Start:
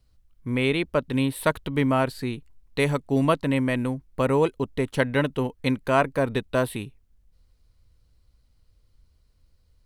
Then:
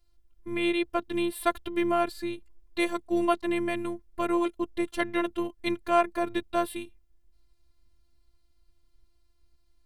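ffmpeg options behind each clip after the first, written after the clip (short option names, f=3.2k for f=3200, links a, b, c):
-af "afftfilt=real='hypot(re,im)*cos(PI*b)':imag='0':win_size=512:overlap=0.75"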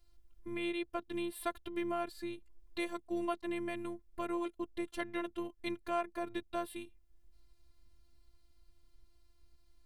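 -af "acompressor=threshold=-55dB:ratio=1.5,volume=1dB"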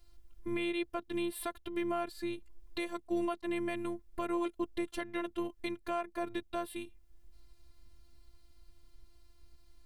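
-af "alimiter=level_in=4.5dB:limit=-24dB:level=0:latency=1:release=477,volume=-4.5dB,volume=6dB"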